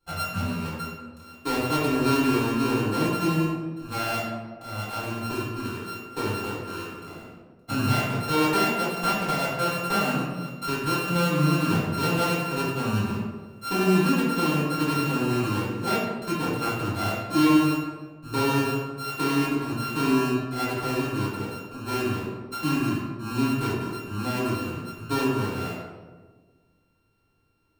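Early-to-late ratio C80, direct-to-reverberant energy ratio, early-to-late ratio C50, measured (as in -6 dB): 2.0 dB, -11.0 dB, -0.5 dB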